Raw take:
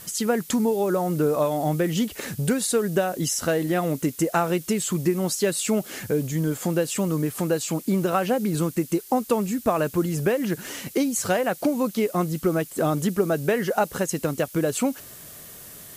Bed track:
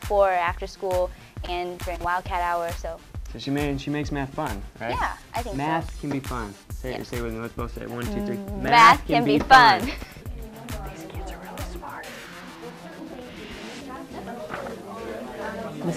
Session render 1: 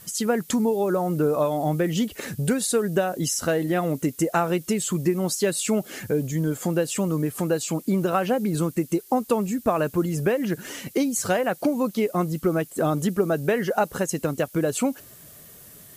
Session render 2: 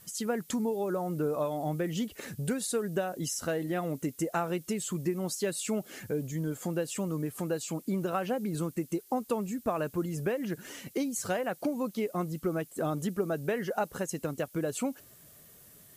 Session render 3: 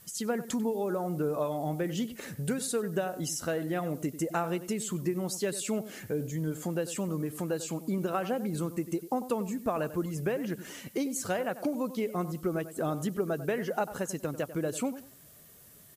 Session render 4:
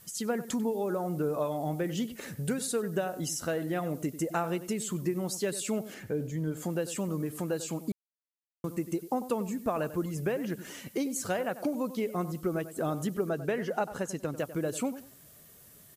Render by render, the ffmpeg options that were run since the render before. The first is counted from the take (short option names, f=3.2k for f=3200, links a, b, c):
-af "afftdn=nr=6:nf=-43"
-af "volume=-8.5dB"
-filter_complex "[0:a]asplit=2[a][b];[b]adelay=95,lowpass=f=2k:p=1,volume=-13dB,asplit=2[c][d];[d]adelay=95,lowpass=f=2k:p=1,volume=0.25,asplit=2[e][f];[f]adelay=95,lowpass=f=2k:p=1,volume=0.25[g];[a][c][e][g]amix=inputs=4:normalize=0"
-filter_complex "[0:a]asettb=1/sr,asplit=3[a][b][c];[a]atrim=end=5.944[d];[b]atrim=start=5.94:end=6.57,asetpts=PTS-STARTPTS,afade=t=in:d=0.004:c=qsin,afade=t=out:st=0.626:d=0.004:c=qsin,highshelf=f=5.1k:g=-8.5[e];[c]atrim=start=6.566[f];[d][e]acrossfade=d=0.004:c1=hsin:c2=qsin[g];[g][f]acrossfade=d=0.004:c1=qsin:c2=hsin,asettb=1/sr,asplit=3[h][i][j];[h]atrim=end=13.294[k];[i]atrim=start=13.29:end=14.37,asetpts=PTS-STARTPTS,afade=t=in:d=0.004:c=qsin,afade=t=out:st=1.076:d=0.004:c=qsin,highshelf=f=12k:g=-11.5[l];[j]atrim=start=14.366[m];[k][l]acrossfade=d=0.004:c1=hsin:c2=qsin[n];[n][m]acrossfade=d=0.004:c1=qsin:c2=hsin,asplit=3[o][p][q];[o]atrim=end=7.92,asetpts=PTS-STARTPTS,afade=t=out:st=7.916:d=0.004:c=hsin[r];[p]atrim=start=7.92:end=8.64,asetpts=PTS-STARTPTS,volume=0[s];[q]atrim=start=8.64,asetpts=PTS-STARTPTS,afade=t=in:d=0.004:c=hsin[t];[r][s][t]concat=n=3:v=0:a=1"